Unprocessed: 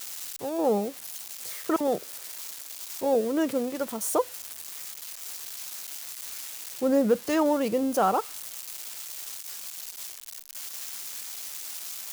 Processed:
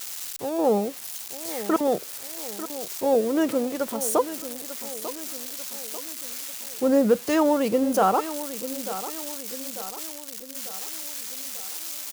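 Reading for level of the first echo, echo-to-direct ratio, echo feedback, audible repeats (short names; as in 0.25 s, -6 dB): -13.0 dB, -11.5 dB, 51%, 4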